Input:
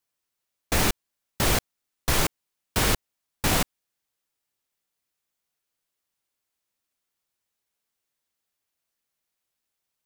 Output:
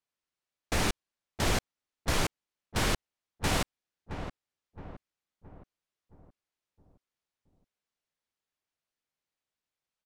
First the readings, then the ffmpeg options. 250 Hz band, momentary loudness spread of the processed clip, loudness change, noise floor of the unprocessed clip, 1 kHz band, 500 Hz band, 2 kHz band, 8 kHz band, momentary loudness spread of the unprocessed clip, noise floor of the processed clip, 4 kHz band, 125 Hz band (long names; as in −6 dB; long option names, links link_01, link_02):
−4.5 dB, 16 LU, −7.0 dB, −83 dBFS, −4.5 dB, −4.5 dB, −5.0 dB, −8.0 dB, 7 LU, below −85 dBFS, −5.5 dB, −4.5 dB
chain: -filter_complex "[0:a]asplit=2[link_01][link_02];[link_02]adelay=669,lowpass=frequency=1200:poles=1,volume=-8.5dB,asplit=2[link_03][link_04];[link_04]adelay=669,lowpass=frequency=1200:poles=1,volume=0.49,asplit=2[link_05][link_06];[link_06]adelay=669,lowpass=frequency=1200:poles=1,volume=0.49,asplit=2[link_07][link_08];[link_08]adelay=669,lowpass=frequency=1200:poles=1,volume=0.49,asplit=2[link_09][link_10];[link_10]adelay=669,lowpass=frequency=1200:poles=1,volume=0.49,asplit=2[link_11][link_12];[link_12]adelay=669,lowpass=frequency=1200:poles=1,volume=0.49[link_13];[link_01][link_03][link_05][link_07][link_09][link_11][link_13]amix=inputs=7:normalize=0,adynamicsmooth=sensitivity=5.5:basefreq=7200,volume=-5dB"